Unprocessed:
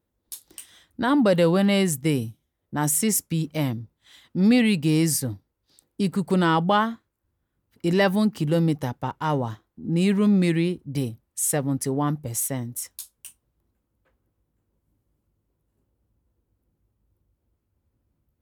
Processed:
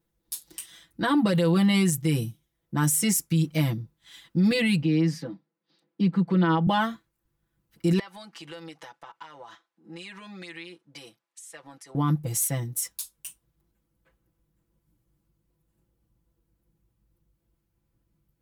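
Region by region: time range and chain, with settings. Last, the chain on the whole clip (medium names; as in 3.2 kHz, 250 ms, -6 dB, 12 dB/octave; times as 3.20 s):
4.82–6.67 s: Chebyshev high-pass 170 Hz, order 4 + distance through air 250 m
7.99–11.95 s: high-pass 760 Hz + compression 5:1, threshold -39 dBFS + distance through air 68 m
whole clip: peaking EQ 580 Hz -5 dB 2.2 oct; comb 6 ms, depth 99%; peak limiter -15 dBFS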